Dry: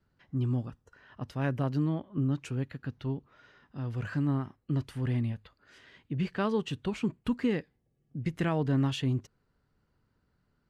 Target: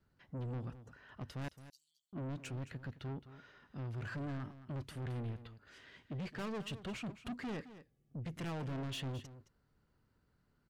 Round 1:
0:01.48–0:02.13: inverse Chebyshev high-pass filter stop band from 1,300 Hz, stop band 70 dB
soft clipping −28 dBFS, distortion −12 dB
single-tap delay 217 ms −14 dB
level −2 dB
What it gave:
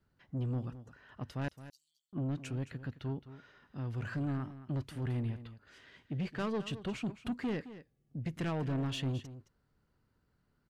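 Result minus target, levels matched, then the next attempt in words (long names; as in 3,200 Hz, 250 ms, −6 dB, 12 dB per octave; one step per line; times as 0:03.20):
soft clipping: distortion −6 dB
0:01.48–0:02.13: inverse Chebyshev high-pass filter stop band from 1,300 Hz, stop band 70 dB
soft clipping −36.5 dBFS, distortion −6 dB
single-tap delay 217 ms −14 dB
level −2 dB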